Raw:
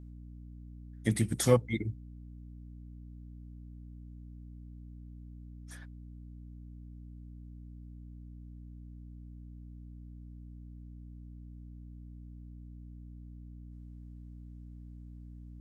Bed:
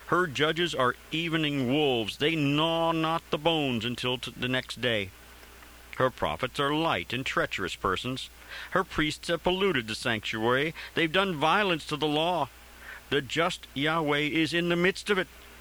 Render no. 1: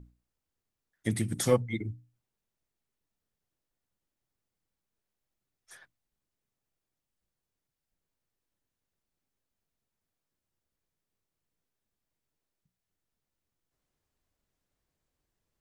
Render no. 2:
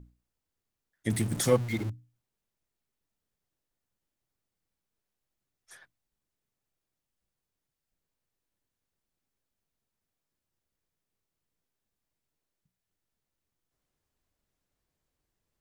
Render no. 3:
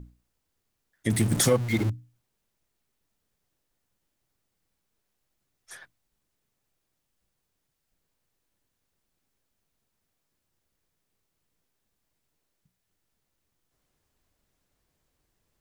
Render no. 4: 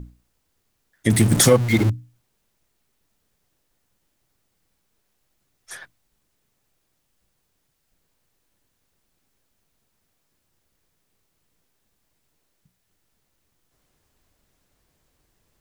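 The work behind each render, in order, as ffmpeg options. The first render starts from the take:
-af "bandreject=f=60:t=h:w=6,bandreject=f=120:t=h:w=6,bandreject=f=180:t=h:w=6,bandreject=f=240:t=h:w=6,bandreject=f=300:t=h:w=6"
-filter_complex "[0:a]asettb=1/sr,asplit=3[a][b][c];[a]atrim=end=1.104[d];[b]atrim=start=1.1:end=1.9,asetpts=PTS-STARTPTS,afade=t=in:d=0.004:c=qsin,afade=t=out:st=0.796:d=0.004:c=qsin,aeval=exprs='val(0)+0.5*0.0168*sgn(val(0))':c=same[e];[c]atrim=start=1.896[f];[d][e]acrossfade=d=0.004:c1=hsin:c2=qsin[g];[g][f]acrossfade=d=0.004:c1=qsin:c2=hsin"
-af "acontrast=90,alimiter=limit=-12dB:level=0:latency=1:release=277"
-af "volume=7.5dB"

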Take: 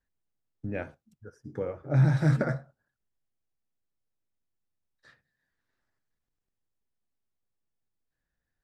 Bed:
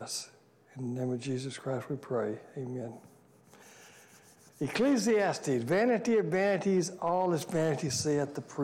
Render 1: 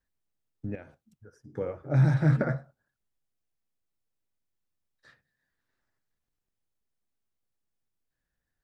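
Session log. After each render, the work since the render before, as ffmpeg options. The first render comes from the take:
-filter_complex "[0:a]asettb=1/sr,asplit=3[a][b][c];[a]atrim=end=0.754[d];[b]atrim=start=0.75:end=1.57,asetpts=PTS-STARTPTS,afade=t=in:d=0.004:c=qsin,afade=t=out:st=0.816:d=0.004:c=qsin,acompressor=threshold=-50dB:ratio=2:attack=3.2:release=140:knee=1:detection=peak[e];[c]atrim=start=1.566[f];[d][e]acrossfade=d=0.004:c1=hsin:c2=qsin[g];[g][f]acrossfade=d=0.004:c1=qsin:c2=hsin,asettb=1/sr,asplit=3[h][i][j];[h]atrim=end=2.144[k];[i]atrim=start=2.14:end=2.58,asetpts=PTS-STARTPTS,afade=t=in:d=0.004:c=qsin,afade=t=out:st=0.436:d=0.004:c=qsin,bass=f=250:g=1,treble=f=4k:g=-10[l];[j]atrim=start=2.576[m];[k][l]acrossfade=d=0.004:c1=hsin:c2=qsin[n];[n][m]acrossfade=d=0.004:c1=qsin:c2=hsin"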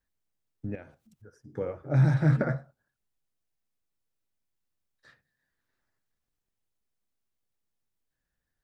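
-filter_complex "[0:a]asettb=1/sr,asplit=3[a][b][c];[a]atrim=end=0.744[d];[b]atrim=start=0.74:end=1.33,asetpts=PTS-STARTPTS,afade=t=in:d=0.004:c=qsin,afade=t=out:st=0.586:d=0.004:c=qsin,acompressor=mode=upward:threshold=-54dB:ratio=2.5:attack=3.2:release=140:knee=2.83:detection=peak[e];[c]atrim=start=1.326[f];[d][e]acrossfade=d=0.004:c1=hsin:c2=qsin[g];[g][f]acrossfade=d=0.004:c1=qsin:c2=hsin"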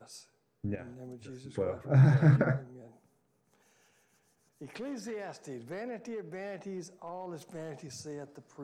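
-filter_complex "[1:a]volume=-13dB[a];[0:a][a]amix=inputs=2:normalize=0"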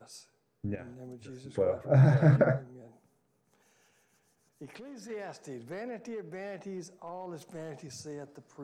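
-filter_complex "[0:a]asettb=1/sr,asplit=3[a][b][c];[a]atrim=end=1.374[d];[b]atrim=start=1.37:end=2.59,asetpts=PTS-STARTPTS,afade=t=in:d=0.004:c=qsin,afade=t=out:st=1.216:d=0.004:c=qsin,equalizer=f=600:t=o:w=0.59:g=8[e];[c]atrim=start=2.586[f];[d][e]acrossfade=d=0.004:c1=hsin:c2=qsin[g];[g][f]acrossfade=d=0.004:c1=qsin:c2=hsin,asplit=3[h][i][j];[h]afade=t=out:st=4.65:d=0.02[k];[i]acompressor=threshold=-44dB:ratio=4:attack=3.2:release=140:knee=1:detection=peak,afade=t=in:st=4.65:d=0.02,afade=t=out:st=5.09:d=0.02[l];[j]afade=t=in:st=5.09:d=0.02[m];[k][l][m]amix=inputs=3:normalize=0"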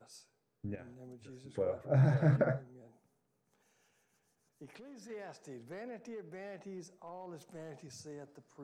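-af "volume=-6dB"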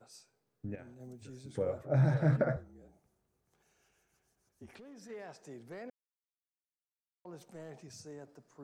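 -filter_complex "[0:a]asettb=1/sr,asplit=3[a][b][c];[a]atrim=end=1.004[d];[b]atrim=start=1:end=1.83,asetpts=PTS-STARTPTS,afade=t=in:d=0.004:c=qsin,afade=t=out:st=0.826:d=0.004:c=qsin,bass=f=250:g=5,treble=f=4k:g=6[e];[c]atrim=start=1.826[f];[d][e]acrossfade=d=0.004:c1=hsin:c2=qsin[g];[g][f]acrossfade=d=0.004:c1=qsin:c2=hsin,asettb=1/sr,asplit=3[h][i][j];[h]atrim=end=2.564[k];[i]atrim=start=2.56:end=4.79,asetpts=PTS-STARTPTS,afade=t=in:d=0.004:c=qsin,afade=t=out:st=2.226:d=0.004:c=qsin,afreqshift=-47[l];[j]atrim=start=4.786[m];[k][l]acrossfade=d=0.004:c1=hsin:c2=qsin[n];[n][m]acrossfade=d=0.004:c1=qsin:c2=hsin,asplit=3[o][p][q];[o]atrim=end=5.9,asetpts=PTS-STARTPTS,afade=t=out:st=5.896:d=0.004:c=hsin[r];[p]atrim=start=5.9:end=7.25,asetpts=PTS-STARTPTS,volume=0[s];[q]atrim=start=7.25,asetpts=PTS-STARTPTS,afade=t=in:d=0.004:c=hsin[t];[r][s][t]concat=n=3:v=0:a=1"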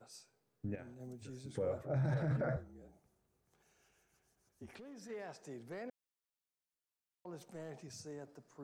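-af "alimiter=level_in=4.5dB:limit=-24dB:level=0:latency=1:release=15,volume=-4.5dB"

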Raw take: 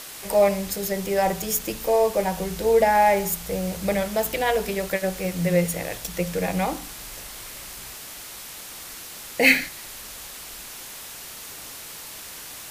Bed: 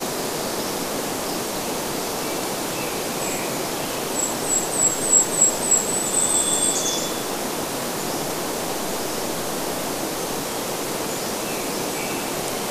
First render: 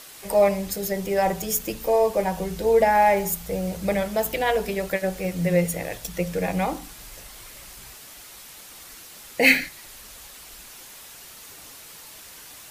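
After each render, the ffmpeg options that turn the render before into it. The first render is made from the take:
-af "afftdn=nr=6:nf=-39"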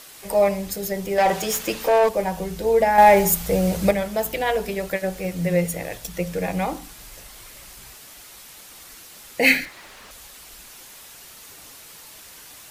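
-filter_complex "[0:a]asettb=1/sr,asplit=3[a][b][c];[a]atrim=end=1.184[d];[b]atrim=start=1.18:end=2.09,asetpts=PTS-STARTPTS,afade=t=in:d=0.004:c=qsin,afade=t=out:st=0.906:d=0.004:c=qsin,asplit=2[e][f];[f]highpass=f=720:p=1,volume=17dB,asoftclip=type=tanh:threshold=-10dB[g];[e][g]amix=inputs=2:normalize=0,lowpass=f=3.9k:p=1,volume=-6dB[h];[c]atrim=start=2.086[i];[d][h]acrossfade=d=0.004:c1=hsin:c2=qsin[j];[j][i]acrossfade=d=0.004:c1=qsin:c2=hsin,asettb=1/sr,asplit=3[k][l][m];[k]atrim=end=2.984[n];[l]atrim=start=2.98:end=3.91,asetpts=PTS-STARTPTS,afade=t=in:d=0.004:c=qsin,afade=t=out:st=0.926:d=0.004:c=qsin,acontrast=88[o];[m]atrim=start=3.906[p];[n][o]acrossfade=d=0.004:c1=hsin:c2=qsin[q];[q][p]acrossfade=d=0.004:c1=qsin:c2=hsin,asettb=1/sr,asplit=3[r][s][t];[r]atrim=end=9.654[u];[s]atrim=start=9.65:end=10.11,asetpts=PTS-STARTPTS,afade=t=in:d=0.004:c=qsin,afade=t=out:st=0.456:d=0.004:c=qsin,asplit=2[v][w];[w]highpass=f=720:p=1,volume=21dB,asoftclip=type=tanh:threshold=-26.5dB[x];[v][x]amix=inputs=2:normalize=0,lowpass=f=1.3k:p=1,volume=-6dB[y];[t]atrim=start=10.106[z];[u][y]acrossfade=d=0.004:c1=hsin:c2=qsin[aa];[aa][z]acrossfade=d=0.004:c1=qsin:c2=hsin"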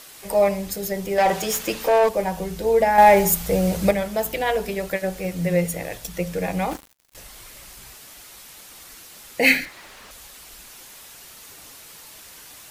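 -filter_complex "[0:a]asettb=1/sr,asplit=3[a][b][c];[a]atrim=end=6.714[d];[b]atrim=start=6.71:end=7.15,asetpts=PTS-STARTPTS,afade=t=in:d=0.004:c=qsin,afade=t=out:st=0.436:d=0.004:c=qsin,acrusher=bits=4:mix=0:aa=0.5[e];[c]atrim=start=7.146[f];[d][e]acrossfade=d=0.004:c1=hsin:c2=qsin[g];[g][f]acrossfade=d=0.004:c1=qsin:c2=hsin"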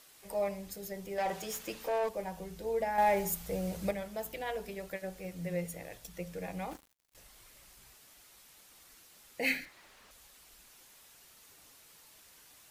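-af "volume=-15dB"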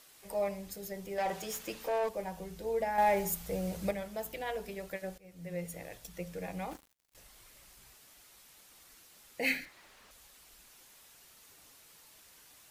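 -filter_complex "[0:a]asplit=2[a][b];[a]atrim=end=5.18,asetpts=PTS-STARTPTS,afade=t=out:st=5.176:d=0.004:c=hsin:silence=0.1[c];[b]atrim=start=5.18,asetpts=PTS-STARTPTS,afade=t=in:d=0.61:silence=0.1[d];[c][d]concat=n=2:v=0:a=1"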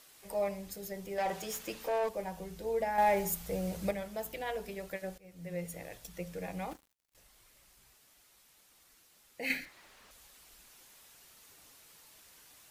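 -filter_complex "[0:a]asplit=3[a][b][c];[a]atrim=end=6.732[d];[b]atrim=start=6.728:end=9.502,asetpts=PTS-STARTPTS,volume=-5.5dB[e];[c]atrim=start=9.498[f];[d][e]acrossfade=d=0.004:c1=hsin:c2=hsin[g];[g][f]acrossfade=d=0.004:c1=hsin:c2=hsin"

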